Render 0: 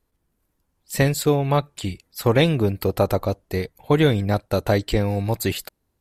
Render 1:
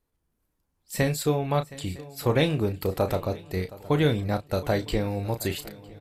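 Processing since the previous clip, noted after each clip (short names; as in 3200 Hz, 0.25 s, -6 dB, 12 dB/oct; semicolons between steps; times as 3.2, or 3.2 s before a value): doubler 33 ms -9.5 dB; swung echo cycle 0.957 s, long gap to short 3:1, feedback 36%, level -19 dB; gain -5.5 dB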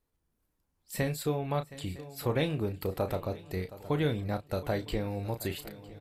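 dynamic EQ 6300 Hz, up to -5 dB, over -52 dBFS, Q 1.4; in parallel at -1 dB: compressor, threshold -34 dBFS, peak gain reduction 16 dB; on the sum: gain -8 dB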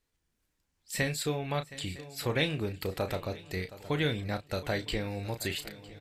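band shelf 3600 Hz +8 dB 2.7 oct; gain -1.5 dB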